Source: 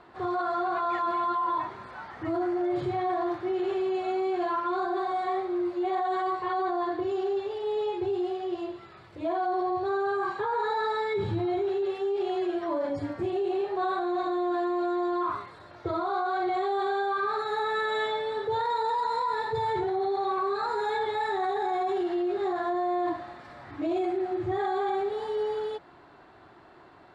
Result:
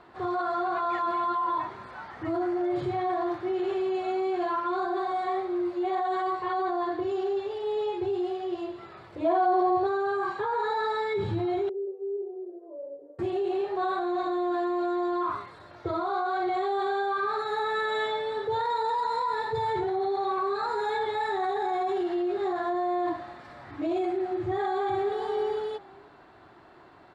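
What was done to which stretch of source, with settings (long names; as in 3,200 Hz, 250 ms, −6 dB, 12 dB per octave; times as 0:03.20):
0:08.78–0:09.87: parametric band 610 Hz +5.5 dB 2.7 octaves
0:11.69–0:13.19: flat-topped band-pass 460 Hz, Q 3.7
0:24.41–0:25.14: delay throw 470 ms, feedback 15%, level −7.5 dB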